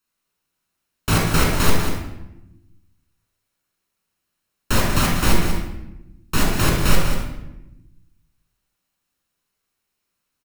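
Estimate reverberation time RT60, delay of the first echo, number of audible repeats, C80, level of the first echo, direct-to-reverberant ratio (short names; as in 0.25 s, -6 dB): 0.95 s, 0.19 s, 1, 3.0 dB, -9.0 dB, -2.0 dB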